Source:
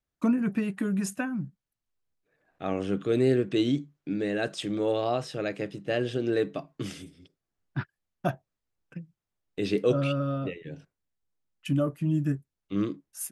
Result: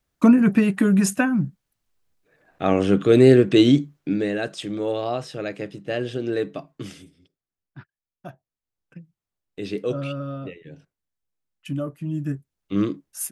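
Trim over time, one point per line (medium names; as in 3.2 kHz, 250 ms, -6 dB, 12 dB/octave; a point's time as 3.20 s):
3.95 s +10.5 dB
4.47 s +1.5 dB
6.68 s +1.5 dB
7.78 s -11 dB
8.30 s -11 dB
8.98 s -2 dB
12.10 s -2 dB
12.74 s +6 dB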